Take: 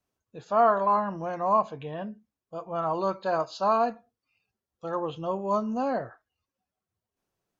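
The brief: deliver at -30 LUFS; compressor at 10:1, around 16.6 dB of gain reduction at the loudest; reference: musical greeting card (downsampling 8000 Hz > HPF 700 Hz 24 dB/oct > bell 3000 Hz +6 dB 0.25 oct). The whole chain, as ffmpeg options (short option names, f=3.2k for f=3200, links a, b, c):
-af "acompressor=threshold=-34dB:ratio=10,aresample=8000,aresample=44100,highpass=f=700:w=0.5412,highpass=f=700:w=1.3066,equalizer=f=3k:t=o:w=0.25:g=6,volume=12.5dB"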